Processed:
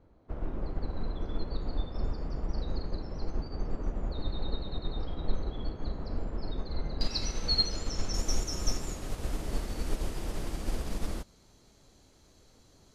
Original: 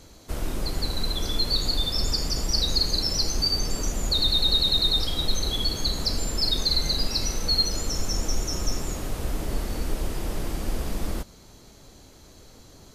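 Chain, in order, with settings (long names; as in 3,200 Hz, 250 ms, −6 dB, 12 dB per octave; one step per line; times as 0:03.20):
low-pass filter 1,200 Hz 12 dB per octave, from 0:07.01 5,200 Hz, from 0:08.14 11,000 Hz
expander for the loud parts 1.5 to 1, over −36 dBFS
level −1.5 dB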